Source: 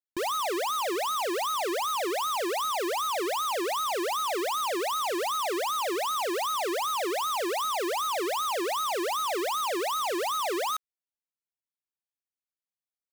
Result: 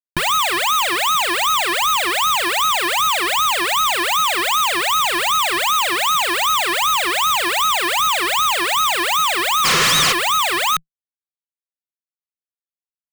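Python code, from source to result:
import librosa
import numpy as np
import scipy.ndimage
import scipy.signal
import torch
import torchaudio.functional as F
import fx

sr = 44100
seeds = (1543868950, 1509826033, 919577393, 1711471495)

y = fx.spec_repair(x, sr, seeds[0], start_s=9.68, length_s=0.42, low_hz=480.0, high_hz=3200.0, source='after')
y = fx.tone_stack(y, sr, knobs='10-0-10')
y = fx.fuzz(y, sr, gain_db=52.0, gate_db=-55.0)
y = fx.peak_eq(y, sr, hz=160.0, db=13.5, octaves=0.43)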